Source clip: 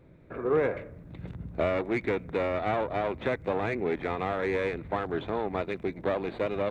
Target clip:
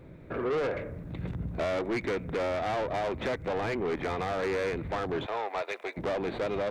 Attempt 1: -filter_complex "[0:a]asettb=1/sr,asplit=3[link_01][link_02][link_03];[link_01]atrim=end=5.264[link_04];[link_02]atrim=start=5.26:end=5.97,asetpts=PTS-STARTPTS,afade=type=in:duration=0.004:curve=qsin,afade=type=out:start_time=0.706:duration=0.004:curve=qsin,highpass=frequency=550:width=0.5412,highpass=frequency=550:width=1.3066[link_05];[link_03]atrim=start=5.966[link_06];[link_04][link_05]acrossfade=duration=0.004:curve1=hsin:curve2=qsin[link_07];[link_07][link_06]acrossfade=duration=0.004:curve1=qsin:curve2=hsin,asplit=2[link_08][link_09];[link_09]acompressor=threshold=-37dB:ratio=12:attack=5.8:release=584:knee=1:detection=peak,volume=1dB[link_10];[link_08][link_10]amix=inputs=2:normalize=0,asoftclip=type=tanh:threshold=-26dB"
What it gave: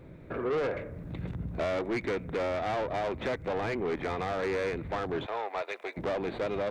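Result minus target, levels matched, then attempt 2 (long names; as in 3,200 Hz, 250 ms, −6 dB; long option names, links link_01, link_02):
downward compressor: peak gain reduction +6.5 dB
-filter_complex "[0:a]asettb=1/sr,asplit=3[link_01][link_02][link_03];[link_01]atrim=end=5.264[link_04];[link_02]atrim=start=5.26:end=5.97,asetpts=PTS-STARTPTS,afade=type=in:duration=0.004:curve=qsin,afade=type=out:start_time=0.706:duration=0.004:curve=qsin,highpass=frequency=550:width=0.5412,highpass=frequency=550:width=1.3066[link_05];[link_03]atrim=start=5.966[link_06];[link_04][link_05]acrossfade=duration=0.004:curve1=hsin:curve2=qsin[link_07];[link_07][link_06]acrossfade=duration=0.004:curve1=qsin:curve2=hsin,asplit=2[link_08][link_09];[link_09]acompressor=threshold=-30dB:ratio=12:attack=5.8:release=584:knee=1:detection=peak,volume=1dB[link_10];[link_08][link_10]amix=inputs=2:normalize=0,asoftclip=type=tanh:threshold=-26dB"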